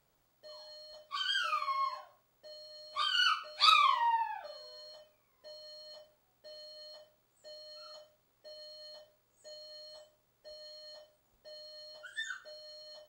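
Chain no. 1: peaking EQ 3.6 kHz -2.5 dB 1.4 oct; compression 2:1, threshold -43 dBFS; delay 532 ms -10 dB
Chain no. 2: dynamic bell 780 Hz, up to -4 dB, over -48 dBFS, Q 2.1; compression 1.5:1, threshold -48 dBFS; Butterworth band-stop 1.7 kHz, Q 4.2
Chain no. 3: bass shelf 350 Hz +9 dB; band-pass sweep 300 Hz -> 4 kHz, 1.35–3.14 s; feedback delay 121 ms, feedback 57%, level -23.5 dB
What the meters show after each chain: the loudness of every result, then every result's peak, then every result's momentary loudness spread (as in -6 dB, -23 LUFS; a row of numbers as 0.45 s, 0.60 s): -44.0 LUFS, -43.5 LUFS, -39.0 LUFS; -25.5 dBFS, -23.0 dBFS, -15.5 dBFS; 18 LU, 19 LU, 22 LU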